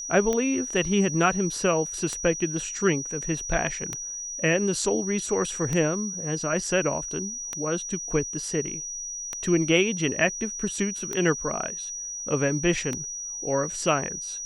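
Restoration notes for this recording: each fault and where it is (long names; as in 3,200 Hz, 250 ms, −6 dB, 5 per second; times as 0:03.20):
scratch tick 33 1/3 rpm −14 dBFS
whistle 5,800 Hz −32 dBFS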